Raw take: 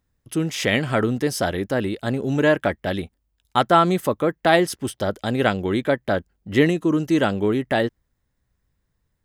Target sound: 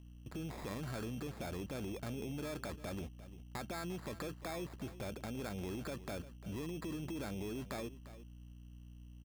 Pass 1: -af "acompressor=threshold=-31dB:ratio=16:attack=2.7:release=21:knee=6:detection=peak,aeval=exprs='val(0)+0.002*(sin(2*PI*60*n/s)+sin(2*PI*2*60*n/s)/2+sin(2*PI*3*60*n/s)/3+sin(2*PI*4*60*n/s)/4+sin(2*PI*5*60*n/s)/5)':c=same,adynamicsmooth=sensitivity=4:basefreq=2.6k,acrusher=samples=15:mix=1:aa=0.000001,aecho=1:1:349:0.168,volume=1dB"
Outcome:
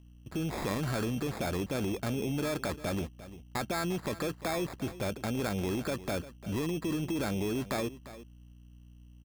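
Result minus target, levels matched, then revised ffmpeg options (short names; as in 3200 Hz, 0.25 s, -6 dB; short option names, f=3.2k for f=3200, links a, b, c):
compressor: peak gain reduction -10 dB
-af "acompressor=threshold=-41.5dB:ratio=16:attack=2.7:release=21:knee=6:detection=peak,aeval=exprs='val(0)+0.002*(sin(2*PI*60*n/s)+sin(2*PI*2*60*n/s)/2+sin(2*PI*3*60*n/s)/3+sin(2*PI*4*60*n/s)/4+sin(2*PI*5*60*n/s)/5)':c=same,adynamicsmooth=sensitivity=4:basefreq=2.6k,acrusher=samples=15:mix=1:aa=0.000001,aecho=1:1:349:0.168,volume=1dB"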